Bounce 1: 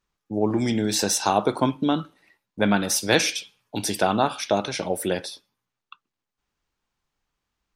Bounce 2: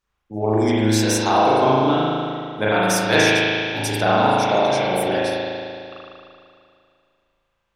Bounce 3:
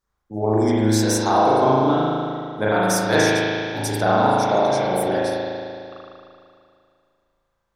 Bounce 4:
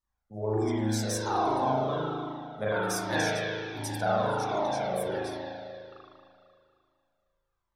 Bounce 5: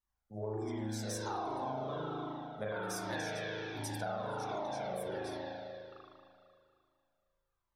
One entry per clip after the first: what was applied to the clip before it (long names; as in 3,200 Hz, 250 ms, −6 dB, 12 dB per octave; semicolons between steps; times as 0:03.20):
parametric band 210 Hz −6 dB 1.4 octaves; spring reverb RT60 2.4 s, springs 37 ms, chirp 70 ms, DRR −8.5 dB; level −1 dB
parametric band 2,700 Hz −12 dB 0.69 octaves
flanger whose copies keep moving one way falling 1.3 Hz; level −5.5 dB
downward compressor, threshold −31 dBFS, peak gain reduction 9 dB; level −4 dB